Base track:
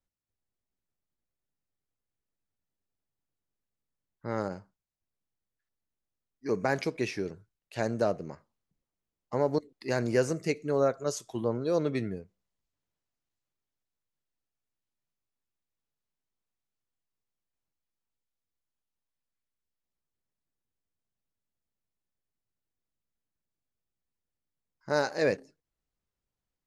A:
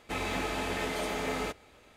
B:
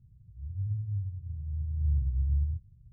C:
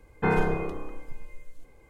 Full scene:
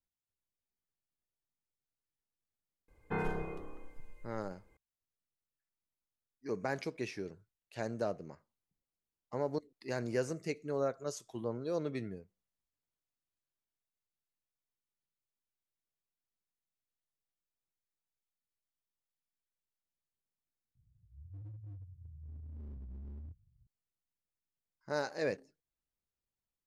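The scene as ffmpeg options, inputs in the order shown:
ffmpeg -i bed.wav -i cue0.wav -i cue1.wav -i cue2.wav -filter_complex "[0:a]volume=-8dB[link_01];[2:a]asoftclip=type=hard:threshold=-30.5dB[link_02];[link_01]asplit=2[link_03][link_04];[link_03]atrim=end=20.754[link_05];[link_02]atrim=end=2.92,asetpts=PTS-STARTPTS,volume=-14dB[link_06];[link_04]atrim=start=23.666[link_07];[3:a]atrim=end=1.89,asetpts=PTS-STARTPTS,volume=-11.5dB,afade=type=in:duration=0.004:curve=hsin,afade=type=out:start_time=1.886:duration=0.004:curve=hsin,adelay=2880[link_08];[link_05][link_06]acrossfade=duration=0.004:curve1=hsin:curve2=hsin[link_09];[link_09][link_07]acrossfade=duration=0.004:curve1=hsin:curve2=hsin[link_10];[link_10][link_08]amix=inputs=2:normalize=0" out.wav

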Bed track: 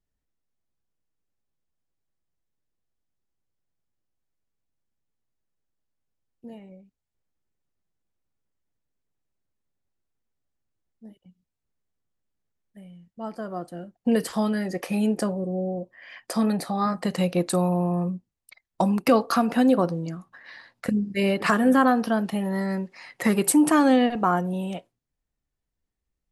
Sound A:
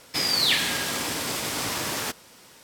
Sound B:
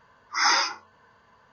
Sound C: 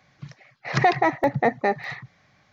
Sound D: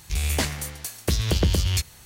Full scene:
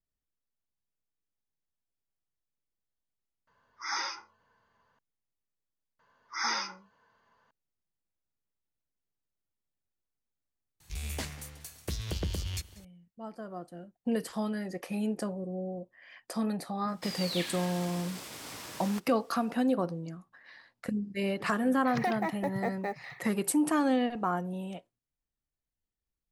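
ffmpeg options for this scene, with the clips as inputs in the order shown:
ffmpeg -i bed.wav -i cue0.wav -i cue1.wav -i cue2.wav -i cue3.wav -filter_complex "[2:a]asplit=2[link_01][link_02];[0:a]volume=-8.5dB[link_03];[link_02]highpass=frequency=150:poles=1[link_04];[4:a]aecho=1:1:190|380|570|760|950:0.0841|0.0505|0.0303|0.0182|0.0109[link_05];[3:a]acrusher=bits=8:mode=log:mix=0:aa=0.000001[link_06];[link_01]atrim=end=1.52,asetpts=PTS-STARTPTS,volume=-12.5dB,afade=type=in:duration=0.004:curve=hsin,afade=type=out:start_time=1.516:duration=0.004:curve=hsin,adelay=3470[link_07];[link_04]atrim=end=1.52,asetpts=PTS-STARTPTS,volume=-10dB,afade=type=in:duration=0.004:curve=hsin,afade=type=out:start_time=1.516:duration=0.004:curve=hsin,adelay=5990[link_08];[link_05]atrim=end=2.05,asetpts=PTS-STARTPTS,volume=-12.5dB,afade=type=in:duration=0.004:curve=hsin,afade=type=out:start_time=2.046:duration=0.004:curve=hsin,adelay=10800[link_09];[1:a]atrim=end=2.63,asetpts=PTS-STARTPTS,volume=-15dB,afade=type=in:duration=0.004:curve=hsin,afade=type=out:start_time=2.626:duration=0.004:curve=hsin,adelay=16880[link_10];[link_06]atrim=end=2.52,asetpts=PTS-STARTPTS,volume=-13dB,afade=type=in:duration=0.004:curve=hsin,afade=type=out:start_time=2.516:duration=0.004:curve=hsin,adelay=21200[link_11];[link_03][link_07][link_08][link_09][link_10][link_11]amix=inputs=6:normalize=0" out.wav

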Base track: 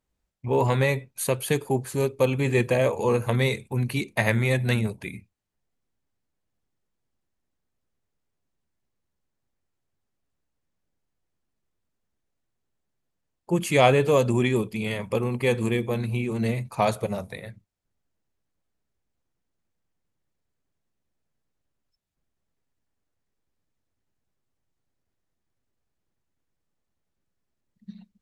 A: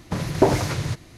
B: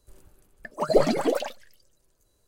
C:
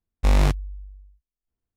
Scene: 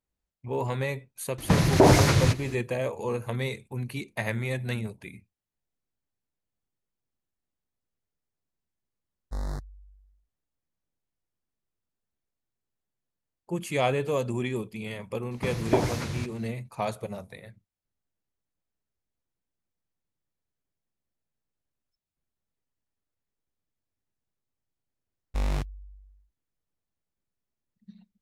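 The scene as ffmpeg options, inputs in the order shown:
ffmpeg -i bed.wav -i cue0.wav -i cue1.wav -i cue2.wav -filter_complex "[1:a]asplit=2[link_01][link_02];[3:a]asplit=2[link_03][link_04];[0:a]volume=-7.5dB[link_05];[link_01]alimiter=level_in=10.5dB:limit=-1dB:release=50:level=0:latency=1[link_06];[link_03]asuperstop=centerf=2700:order=8:qfactor=1.4[link_07];[link_06]atrim=end=1.17,asetpts=PTS-STARTPTS,volume=-5.5dB,afade=type=in:duration=0.004:curve=hsin,afade=type=out:start_time=1.166:duration=0.004:curve=hsin,adelay=1380[link_08];[link_07]atrim=end=1.76,asetpts=PTS-STARTPTS,volume=-15dB,afade=type=in:duration=0.004:curve=hsin,afade=type=out:start_time=1.756:duration=0.004:curve=hsin,adelay=9080[link_09];[link_02]atrim=end=1.17,asetpts=PTS-STARTPTS,volume=-6.5dB,afade=type=in:duration=0.004:curve=hsin,afade=type=out:start_time=1.166:duration=0.004:curve=hsin,adelay=15310[link_10];[link_04]atrim=end=1.76,asetpts=PTS-STARTPTS,volume=-10dB,afade=type=in:duration=0.004:curve=hsin,afade=type=out:start_time=1.756:duration=0.004:curve=hsin,adelay=25110[link_11];[link_05][link_08][link_09][link_10][link_11]amix=inputs=5:normalize=0" out.wav

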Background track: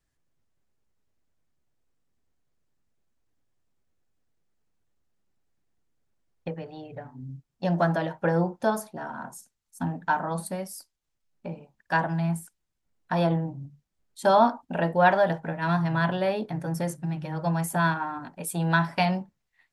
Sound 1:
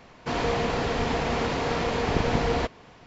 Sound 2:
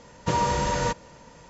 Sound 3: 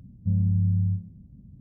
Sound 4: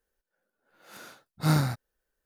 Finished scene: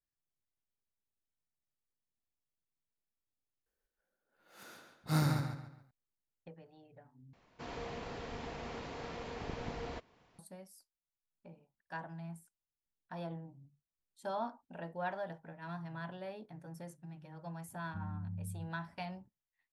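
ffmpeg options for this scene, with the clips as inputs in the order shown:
ffmpeg -i bed.wav -i cue0.wav -i cue1.wav -i cue2.wav -i cue3.wav -filter_complex "[0:a]volume=-19dB[link_01];[4:a]asplit=2[link_02][link_03];[link_03]adelay=139,lowpass=frequency=4600:poles=1,volume=-4.5dB,asplit=2[link_04][link_05];[link_05]adelay=139,lowpass=frequency=4600:poles=1,volume=0.35,asplit=2[link_06][link_07];[link_07]adelay=139,lowpass=frequency=4600:poles=1,volume=0.35,asplit=2[link_08][link_09];[link_09]adelay=139,lowpass=frequency=4600:poles=1,volume=0.35[link_10];[link_02][link_04][link_06][link_08][link_10]amix=inputs=5:normalize=0[link_11];[3:a]highpass=frequency=140:poles=1[link_12];[link_01]asplit=3[link_13][link_14][link_15];[link_13]atrim=end=3.664[link_16];[link_11]atrim=end=2.25,asetpts=PTS-STARTPTS,volume=-7.5dB[link_17];[link_14]atrim=start=5.906:end=7.334[link_18];[1:a]atrim=end=3.06,asetpts=PTS-STARTPTS,volume=-17.5dB[link_19];[link_15]atrim=start=10.386[link_20];[link_12]atrim=end=1.6,asetpts=PTS-STARTPTS,volume=-15dB,afade=type=in:duration=0.004:curve=hsin,afade=type=out:start_time=1.596:duration=0.004:curve=hsin,adelay=17680[link_21];[link_16][link_17]acrossfade=duration=0.004:curve1=hsin:curve2=hsin[link_22];[link_22][link_18]acrossfade=duration=0.004:curve1=hsin:curve2=hsin[link_23];[link_23][link_19]acrossfade=duration=0.004:curve1=hsin:curve2=hsin[link_24];[link_24][link_20]acrossfade=duration=0.004:curve1=hsin:curve2=hsin[link_25];[link_25][link_21]amix=inputs=2:normalize=0" out.wav

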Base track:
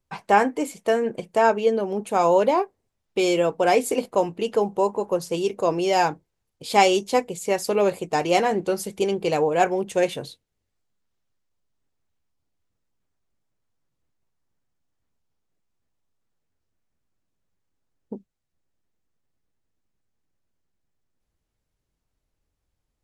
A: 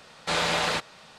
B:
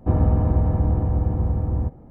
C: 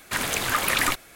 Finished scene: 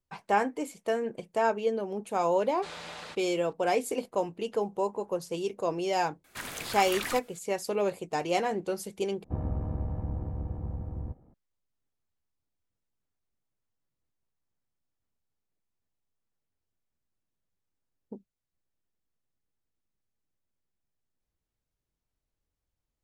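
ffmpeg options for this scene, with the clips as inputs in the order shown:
ffmpeg -i bed.wav -i cue0.wav -i cue1.wav -i cue2.wav -filter_complex "[0:a]volume=-8dB[link_01];[2:a]tremolo=f=70:d=0.519[link_02];[link_01]asplit=2[link_03][link_04];[link_03]atrim=end=9.244[link_05];[link_02]atrim=end=2.1,asetpts=PTS-STARTPTS,volume=-11.5dB[link_06];[link_04]atrim=start=11.336[link_07];[1:a]atrim=end=1.18,asetpts=PTS-STARTPTS,volume=-17dB,afade=type=in:duration=0.004:curve=hsin,afade=type=out:start_time=1.176:duration=0.004:curve=hsin,adelay=2350[link_08];[3:a]atrim=end=1.15,asetpts=PTS-STARTPTS,volume=-12.5dB,afade=type=in:duration=0.004:curve=hsin,afade=type=out:start_time=1.146:duration=0.004:curve=hsin,adelay=6240[link_09];[link_05][link_06]acrossfade=duration=0.004:curve1=hsin:curve2=hsin[link_10];[link_10][link_07]acrossfade=duration=0.004:curve1=hsin:curve2=hsin[link_11];[link_11][link_08][link_09]amix=inputs=3:normalize=0" out.wav

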